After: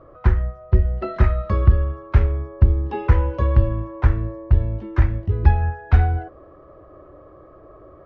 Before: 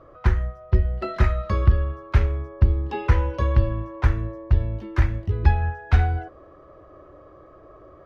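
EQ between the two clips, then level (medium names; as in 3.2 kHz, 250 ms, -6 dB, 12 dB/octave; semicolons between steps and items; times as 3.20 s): distance through air 57 m; treble shelf 2.2 kHz -9 dB; +3.0 dB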